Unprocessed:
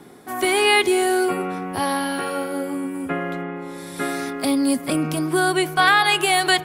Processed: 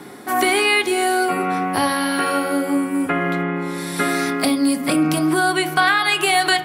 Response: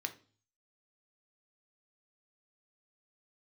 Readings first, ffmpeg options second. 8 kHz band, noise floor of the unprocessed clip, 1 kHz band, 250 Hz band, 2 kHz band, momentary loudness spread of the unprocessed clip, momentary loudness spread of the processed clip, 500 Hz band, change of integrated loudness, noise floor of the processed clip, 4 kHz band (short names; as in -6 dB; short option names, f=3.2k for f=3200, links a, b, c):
+1.5 dB, -35 dBFS, +2.0 dB, +3.5 dB, +2.0 dB, 12 LU, 6 LU, 0.0 dB, +2.0 dB, -29 dBFS, +0.5 dB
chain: -filter_complex "[0:a]acompressor=threshold=-24dB:ratio=4,asplit=2[a][b];[1:a]atrim=start_sample=2205,asetrate=35280,aresample=44100[c];[b][c]afir=irnorm=-1:irlink=0,volume=4.5dB[d];[a][d]amix=inputs=2:normalize=0"